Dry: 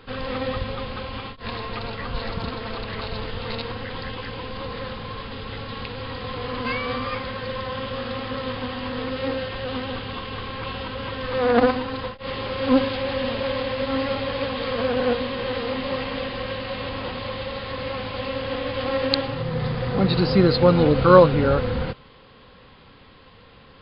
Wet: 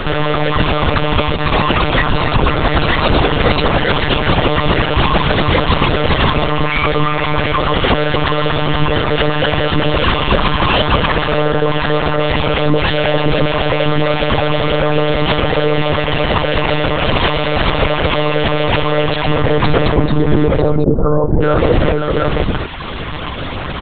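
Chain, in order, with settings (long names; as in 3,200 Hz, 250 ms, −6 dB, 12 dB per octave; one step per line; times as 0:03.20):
downward compressor 8 to 1, threshold −32 dBFS, peak gain reduction 24 dB
0:12.05–0:13.27: comb filter 7.1 ms, depth 91%
0:20.10–0:21.42: Gaussian smoothing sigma 8.5 samples
multi-tap delay 60/119/517/569/594/726 ms −10.5/−10.5/−7/−15/−14.5/−6.5 dB
reverb reduction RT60 1.2 s
one-pitch LPC vocoder at 8 kHz 150 Hz
boost into a limiter +29 dB
level −1 dB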